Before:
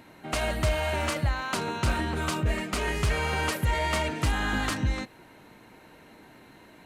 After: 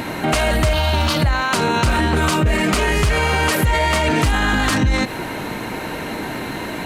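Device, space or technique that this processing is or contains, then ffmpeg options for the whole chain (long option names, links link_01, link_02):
loud club master: -filter_complex "[0:a]asettb=1/sr,asplit=3[link_01][link_02][link_03];[link_01]atrim=end=0.734[link_04];[link_02]atrim=start=0.73:end=1.22,asetpts=PTS-STARTPTS,afade=type=in:duration=0.004:curve=qsin,afade=type=out:start_time=0.486:duration=0.004:curve=qsin,equalizer=frequency=500:width_type=o:width=1:gain=-10,equalizer=frequency=2000:width_type=o:width=1:gain=-11,equalizer=frequency=4000:width_type=o:width=1:gain=8,equalizer=frequency=8000:width_type=o:width=1:gain=-11[link_05];[link_03]atrim=start=1.216[link_06];[link_04][link_05]acrossfade=duration=0.004:curve1=hsin:curve2=qsin[link_07];[link_07][link_06]acrossfade=duration=0.004:curve1=qsin:curve2=hsin,acompressor=threshold=-29dB:ratio=2.5,asoftclip=type=hard:threshold=-22.5dB,alimiter=level_in=34dB:limit=-1dB:release=50:level=0:latency=1,volume=-8.5dB"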